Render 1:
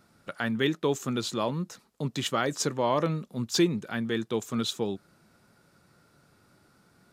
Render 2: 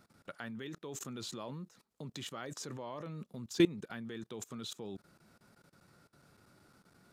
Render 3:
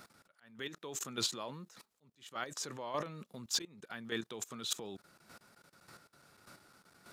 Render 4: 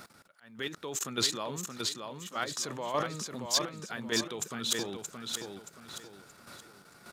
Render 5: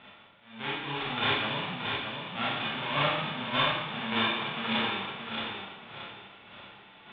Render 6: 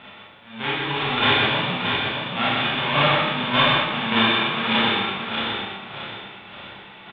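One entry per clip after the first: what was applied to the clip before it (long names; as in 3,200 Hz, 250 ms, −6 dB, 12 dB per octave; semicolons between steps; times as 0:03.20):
output level in coarse steps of 21 dB; level −1 dB
volume swells 466 ms; low-shelf EQ 430 Hz −10.5 dB; square-wave tremolo 1.7 Hz, depth 60%, duty 15%; level +12.5 dB
repeating echo 625 ms, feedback 35%, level −5 dB; level +6 dB
spectral envelope flattened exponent 0.1; Chebyshev low-pass with heavy ripple 3,600 Hz, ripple 3 dB; four-comb reverb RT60 0.9 s, combs from 28 ms, DRR −8 dB; level +2 dB
single-tap delay 124 ms −4.5 dB; level +8.5 dB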